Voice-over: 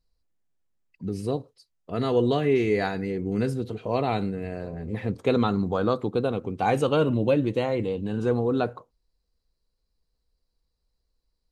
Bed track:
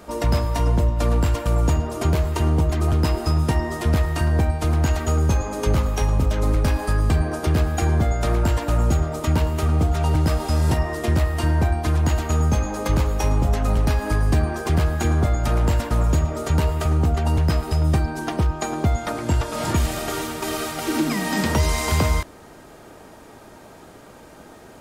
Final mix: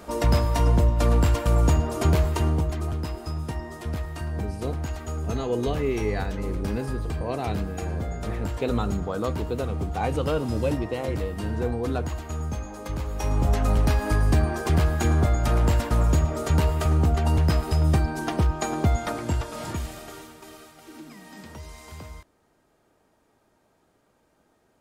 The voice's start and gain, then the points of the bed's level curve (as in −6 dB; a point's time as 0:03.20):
3.35 s, −4.5 dB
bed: 0:02.24 −0.5 dB
0:03.06 −11 dB
0:12.98 −11 dB
0:13.49 −1.5 dB
0:19.01 −1.5 dB
0:20.73 −21.5 dB